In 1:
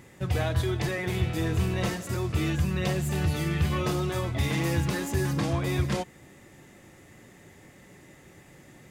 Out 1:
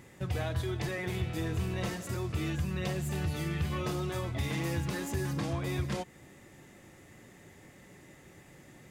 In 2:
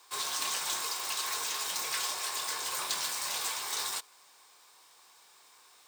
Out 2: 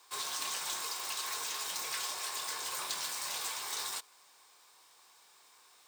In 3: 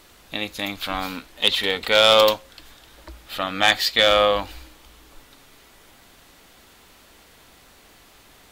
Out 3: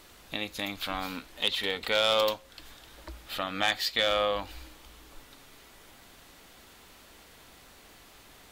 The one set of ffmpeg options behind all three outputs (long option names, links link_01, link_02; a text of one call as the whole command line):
ffmpeg -i in.wav -af "acompressor=threshold=-33dB:ratio=1.5,volume=-2.5dB" out.wav